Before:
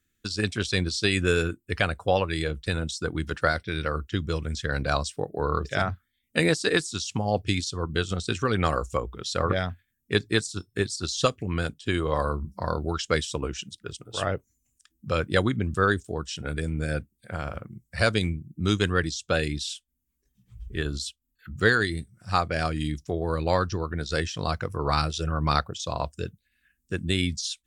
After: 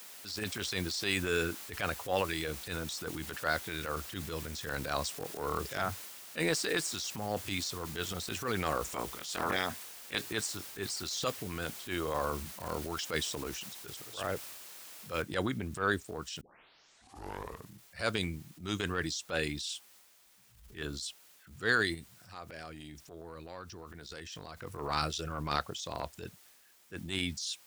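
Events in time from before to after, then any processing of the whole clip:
8.84–10.20 s: spectral peaks clipped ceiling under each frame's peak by 17 dB
15.22 s: noise floor step -45 dB -59 dB
16.41 s: tape start 1.40 s
21.94–24.57 s: compression, threshold -33 dBFS
whole clip: bass shelf 190 Hz -11.5 dB; transient shaper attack -10 dB, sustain +4 dB; trim -4.5 dB

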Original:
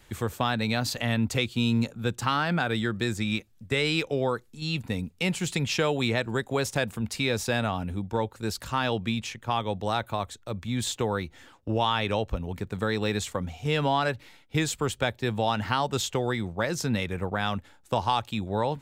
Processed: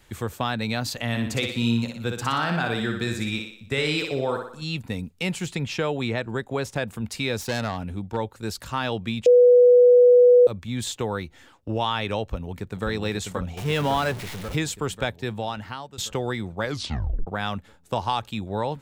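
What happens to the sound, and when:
1.08–4.64 s: thinning echo 60 ms, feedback 51%, high-pass 190 Hz, level -4.5 dB
5.46–6.91 s: treble shelf 3.7 kHz -7.5 dB
7.41–8.17 s: self-modulated delay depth 0.13 ms
9.26–10.47 s: bleep 491 Hz -10 dBFS
12.23–12.86 s: echo throw 540 ms, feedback 70%, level -5 dB
13.57–14.56 s: jump at every zero crossing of -30.5 dBFS
15.10–15.98 s: fade out, to -18 dB
16.62 s: tape stop 0.65 s

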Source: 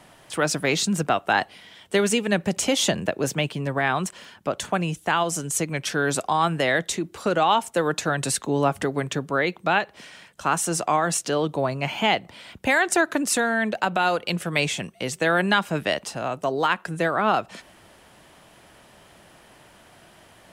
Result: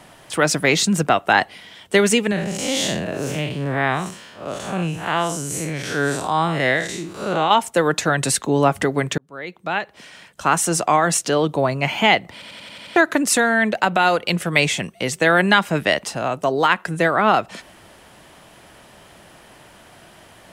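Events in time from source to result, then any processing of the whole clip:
2.31–7.51 s: spectral blur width 145 ms
9.18–10.49 s: fade in linear
12.33 s: stutter in place 0.09 s, 7 plays
whole clip: dynamic bell 2 kHz, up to +5 dB, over -44 dBFS, Q 6.1; trim +5 dB

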